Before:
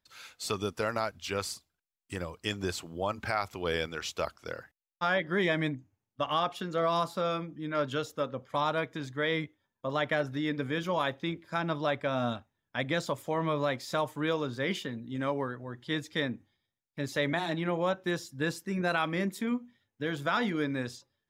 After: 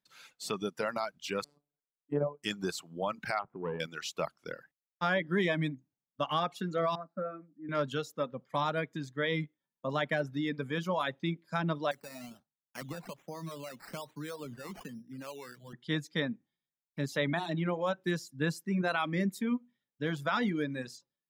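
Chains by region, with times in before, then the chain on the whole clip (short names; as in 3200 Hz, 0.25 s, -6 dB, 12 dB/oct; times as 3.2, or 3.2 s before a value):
1.44–2.43 EQ curve 110 Hz 0 dB, 500 Hz +15 dB, 2400 Hz -12 dB, 5900 Hz -29 dB + robotiser 145 Hz
3.39–3.8 LPF 1400 Hz 24 dB/oct + core saturation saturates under 670 Hz
6.95–7.69 LPF 1400 Hz + fixed phaser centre 620 Hz, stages 8 + upward expander, over -51 dBFS
11.91–15.73 compressor, threshold -36 dBFS + decimation with a swept rate 11×, swing 60% 1.2 Hz + three-band expander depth 100%
whole clip: reverb removal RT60 1.6 s; AGC gain up to 4 dB; resonant low shelf 120 Hz -8 dB, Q 3; gain -5.5 dB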